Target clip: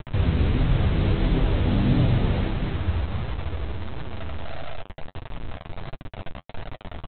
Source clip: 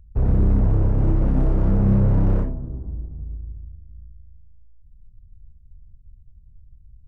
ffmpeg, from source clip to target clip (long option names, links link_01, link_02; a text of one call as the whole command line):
ffmpeg -i in.wav -filter_complex "[0:a]asplit=2[link_01][link_02];[link_02]acompressor=threshold=-33dB:ratio=5,volume=2.5dB[link_03];[link_01][link_03]amix=inputs=2:normalize=0,alimiter=limit=-13.5dB:level=0:latency=1:release=169,asplit=4[link_04][link_05][link_06][link_07];[link_05]asetrate=55563,aresample=44100,atempo=0.793701,volume=-1dB[link_08];[link_06]asetrate=66075,aresample=44100,atempo=0.66742,volume=-4dB[link_09];[link_07]asetrate=88200,aresample=44100,atempo=0.5,volume=-16dB[link_10];[link_04][link_08][link_09][link_10]amix=inputs=4:normalize=0,aeval=exprs='val(0)+0.00355*sin(2*PI*660*n/s)':channel_layout=same,aresample=8000,acrusher=bits=4:mix=0:aa=0.000001,aresample=44100,flanger=delay=6.5:depth=6.1:regen=-26:speed=1.5:shape=triangular" out.wav